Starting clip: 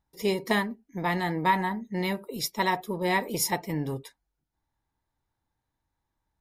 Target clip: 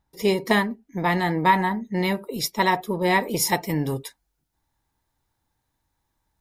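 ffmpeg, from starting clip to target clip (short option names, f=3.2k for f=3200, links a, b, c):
-af "asetnsamples=n=441:p=0,asendcmd='3.47 highshelf g 6',highshelf=f=4k:g=-2,volume=5.5dB"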